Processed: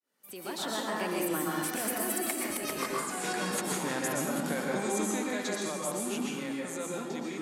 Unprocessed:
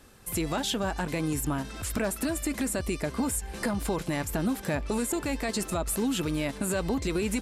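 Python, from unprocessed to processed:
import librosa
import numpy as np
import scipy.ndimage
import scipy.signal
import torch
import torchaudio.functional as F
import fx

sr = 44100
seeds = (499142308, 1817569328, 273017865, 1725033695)

y = fx.fade_in_head(x, sr, length_s=0.75)
y = fx.doppler_pass(y, sr, speed_mps=39, closest_m=16.0, pass_at_s=2.85)
y = scipy.signal.sosfilt(scipy.signal.butter(4, 190.0, 'highpass', fs=sr, output='sos'), y)
y = fx.over_compress(y, sr, threshold_db=-41.0, ratio=-1.0)
y = fx.low_shelf(y, sr, hz=360.0, db=-4.0)
y = fx.rev_plate(y, sr, seeds[0], rt60_s=1.3, hf_ratio=0.55, predelay_ms=105, drr_db=-3.5)
y = y * librosa.db_to_amplitude(6.0)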